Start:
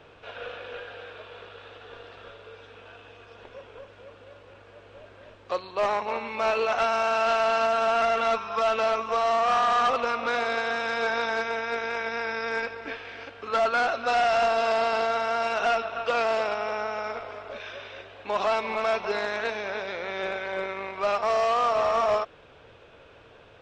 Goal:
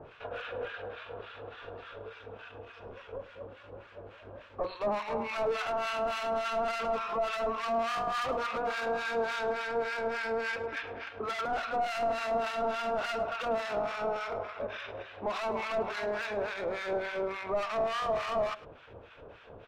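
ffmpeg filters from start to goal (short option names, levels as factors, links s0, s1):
-filter_complex "[0:a]asoftclip=type=hard:threshold=0.0282,lowpass=f=1900:p=1,bandreject=f=60:t=h:w=6,bandreject=f=120:t=h:w=6,bandreject=f=180:t=h:w=6,bandreject=f=240:t=h:w=6,bandreject=f=300:t=h:w=6,bandreject=f=360:t=h:w=6,bandreject=f=420:t=h:w=6,bandreject=f=480:t=h:w=6,bandreject=f=540:t=h:w=6,acrossover=split=1100[s0][s1];[s0]aeval=exprs='val(0)*(1-1/2+1/2*cos(2*PI*2.9*n/s))':c=same[s2];[s1]aeval=exprs='val(0)*(1-1/2-1/2*cos(2*PI*2.9*n/s))':c=same[s3];[s2][s3]amix=inputs=2:normalize=0,atempo=1.2,asplit=2[s4][s5];[s5]adelay=105,volume=0.126,highshelf=f=4000:g=-2.36[s6];[s4][s6]amix=inputs=2:normalize=0,volume=2.24"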